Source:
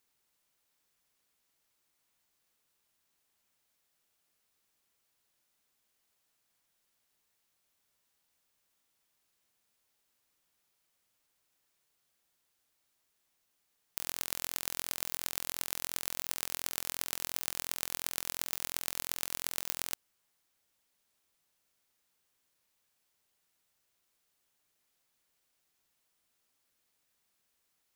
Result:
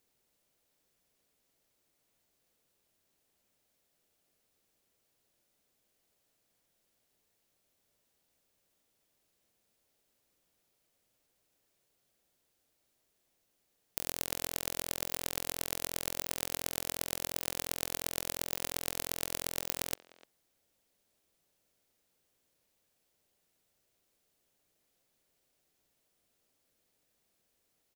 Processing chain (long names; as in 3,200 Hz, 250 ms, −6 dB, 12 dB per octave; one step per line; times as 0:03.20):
low shelf with overshoot 770 Hz +6 dB, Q 1.5
far-end echo of a speakerphone 300 ms, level −18 dB